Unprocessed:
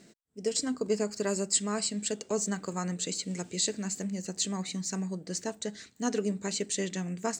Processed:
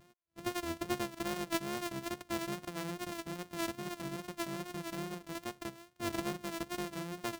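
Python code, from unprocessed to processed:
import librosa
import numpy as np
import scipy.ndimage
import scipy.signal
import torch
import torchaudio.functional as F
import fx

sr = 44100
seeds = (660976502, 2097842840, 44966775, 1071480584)

y = np.r_[np.sort(x[:len(x) // 128 * 128].reshape(-1, 128), axis=1).ravel(), x[len(x) // 128 * 128:]]
y = fx.vibrato(y, sr, rate_hz=2.4, depth_cents=56.0)
y = y * librosa.db_to_amplitude(-7.0)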